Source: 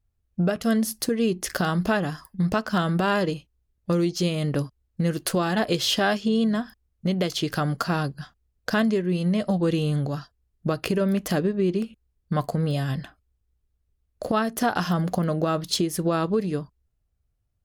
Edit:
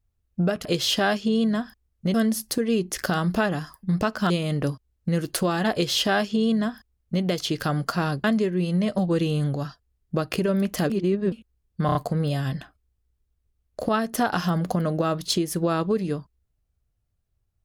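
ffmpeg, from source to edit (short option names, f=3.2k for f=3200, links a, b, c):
-filter_complex "[0:a]asplit=10[a][b][c][d][e][f][g][h][i][j];[a]atrim=end=0.652[k];[b]atrim=start=5.648:end=7.142[l];[c]atrim=start=0.648:end=2.812[m];[d]atrim=start=4.218:end=8.162[n];[e]atrim=start=8.758:end=11.422[o];[f]atrim=start=11.418:end=11.842,asetpts=PTS-STARTPTS,areverse[p];[g]atrim=start=11.838:end=12.412[q];[h]atrim=start=12.378:end=12.412[r];[i]atrim=start=12.378:end=12.412[s];[j]atrim=start=12.378[t];[k][l]acrossfade=d=0.004:c1=hsin:c2=hsin[u];[u][m]acrossfade=d=0.004:c1=hsin:c2=hsin[v];[v][n]acrossfade=d=0.004:c1=hsin:c2=hsin[w];[w][o]acrossfade=d=0.004:c1=hsin:c2=hsin[x];[x][p]acrossfade=d=0.004:c1=hsin:c2=hsin[y];[y][q]acrossfade=d=0.004:c1=hsin:c2=hsin[z];[z][r]acrossfade=d=0.004:c1=hsin:c2=hsin[aa];[aa][s]acrossfade=d=0.004:c1=hsin:c2=hsin[ab];[ab][t]acrossfade=d=0.004:c1=hsin:c2=hsin"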